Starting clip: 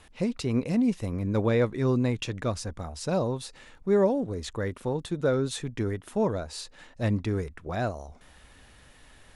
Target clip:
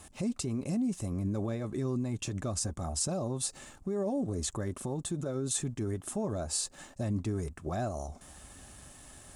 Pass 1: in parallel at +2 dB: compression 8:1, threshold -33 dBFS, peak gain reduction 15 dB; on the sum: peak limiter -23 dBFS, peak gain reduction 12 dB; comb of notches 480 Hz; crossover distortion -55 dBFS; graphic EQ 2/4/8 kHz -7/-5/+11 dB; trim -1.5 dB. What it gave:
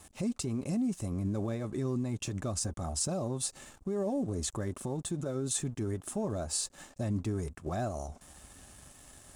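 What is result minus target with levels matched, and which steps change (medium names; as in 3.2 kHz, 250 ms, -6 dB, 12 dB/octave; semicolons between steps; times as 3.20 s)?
crossover distortion: distortion +9 dB
change: crossover distortion -64.5 dBFS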